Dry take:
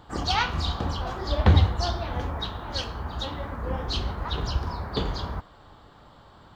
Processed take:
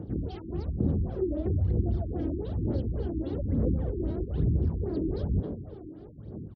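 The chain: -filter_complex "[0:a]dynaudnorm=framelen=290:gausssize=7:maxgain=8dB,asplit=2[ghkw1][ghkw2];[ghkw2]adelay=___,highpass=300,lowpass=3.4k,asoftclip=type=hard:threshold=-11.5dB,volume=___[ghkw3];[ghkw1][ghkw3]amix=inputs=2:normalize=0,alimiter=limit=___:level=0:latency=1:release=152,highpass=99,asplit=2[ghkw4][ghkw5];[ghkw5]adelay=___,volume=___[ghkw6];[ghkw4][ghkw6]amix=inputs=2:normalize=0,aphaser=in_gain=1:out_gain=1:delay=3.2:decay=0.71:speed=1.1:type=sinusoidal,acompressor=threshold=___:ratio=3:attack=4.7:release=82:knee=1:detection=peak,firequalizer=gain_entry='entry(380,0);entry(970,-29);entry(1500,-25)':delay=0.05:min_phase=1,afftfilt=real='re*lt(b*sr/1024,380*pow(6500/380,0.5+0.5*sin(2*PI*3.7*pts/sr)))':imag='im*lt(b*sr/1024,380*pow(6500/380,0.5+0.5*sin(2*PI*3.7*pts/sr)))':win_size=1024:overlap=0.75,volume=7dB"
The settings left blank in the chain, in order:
240, -13dB, -12.5dB, 19, -14dB, -33dB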